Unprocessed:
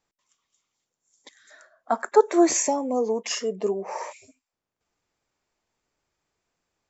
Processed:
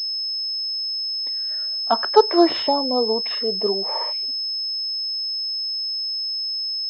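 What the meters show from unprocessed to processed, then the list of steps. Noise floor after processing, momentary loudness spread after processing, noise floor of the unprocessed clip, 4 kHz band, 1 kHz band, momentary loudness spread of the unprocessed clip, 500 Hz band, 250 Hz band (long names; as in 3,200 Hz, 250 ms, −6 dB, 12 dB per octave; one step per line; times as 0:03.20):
−26 dBFS, 6 LU, below −85 dBFS, +21.0 dB, +5.0 dB, 13 LU, +3.0 dB, +2.5 dB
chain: dynamic equaliser 980 Hz, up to +4 dB, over −31 dBFS, Q 1.1
switching amplifier with a slow clock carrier 5,200 Hz
level +2 dB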